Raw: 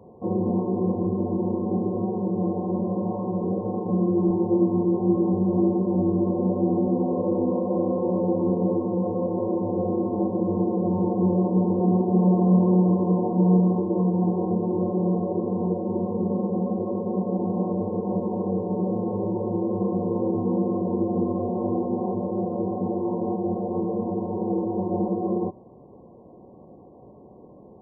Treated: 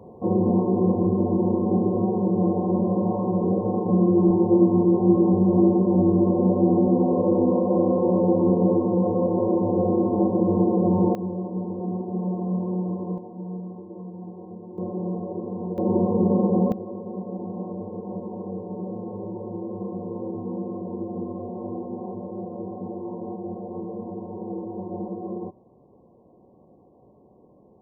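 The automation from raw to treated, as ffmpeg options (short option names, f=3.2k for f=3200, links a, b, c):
-af "asetnsamples=n=441:p=0,asendcmd='11.15 volume volume -8dB;13.18 volume volume -15.5dB;14.78 volume volume -5.5dB;15.78 volume volume 5dB;16.72 volume volume -7dB',volume=3.5dB"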